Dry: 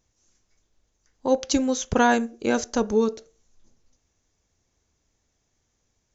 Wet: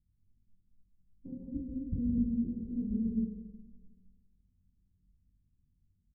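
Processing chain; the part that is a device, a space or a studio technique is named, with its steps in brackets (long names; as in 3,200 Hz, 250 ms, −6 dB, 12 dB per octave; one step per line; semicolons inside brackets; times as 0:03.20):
0:01.32–0:02.18: Chebyshev low-pass filter 640 Hz, order 8
club heard from the street (brickwall limiter −18.5 dBFS, peak gain reduction 9.5 dB; low-pass filter 200 Hz 24 dB per octave; convolution reverb RT60 1.2 s, pre-delay 119 ms, DRR −1 dB)
ambience of single reflections 21 ms −3.5 dB, 49 ms −5 dB
spring reverb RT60 1.9 s, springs 43 ms, chirp 30 ms, DRR 10.5 dB
level −2 dB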